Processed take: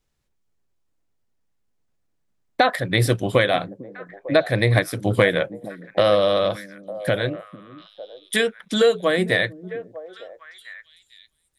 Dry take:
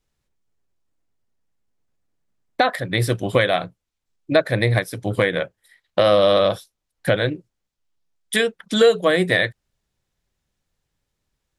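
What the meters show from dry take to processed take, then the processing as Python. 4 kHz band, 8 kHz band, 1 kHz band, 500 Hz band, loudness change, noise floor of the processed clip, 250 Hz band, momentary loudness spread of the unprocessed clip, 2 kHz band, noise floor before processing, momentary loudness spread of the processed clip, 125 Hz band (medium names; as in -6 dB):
-1.5 dB, -0.5 dB, -0.5 dB, -1.5 dB, -1.0 dB, -71 dBFS, -0.5 dB, 12 LU, -0.5 dB, -79 dBFS, 19 LU, +0.5 dB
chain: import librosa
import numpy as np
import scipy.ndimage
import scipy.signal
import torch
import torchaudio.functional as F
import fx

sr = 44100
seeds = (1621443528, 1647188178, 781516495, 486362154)

y = fx.rider(x, sr, range_db=10, speed_s=0.5)
y = fx.echo_stepped(y, sr, ms=451, hz=230.0, octaves=1.4, feedback_pct=70, wet_db=-11)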